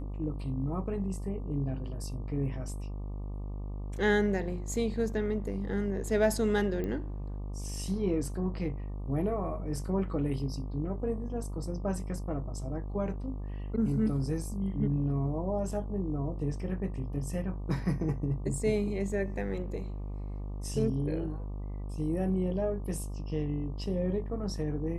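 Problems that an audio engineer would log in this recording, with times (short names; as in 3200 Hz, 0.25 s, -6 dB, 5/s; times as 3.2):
buzz 50 Hz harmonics 24 -37 dBFS
6.84 pop -24 dBFS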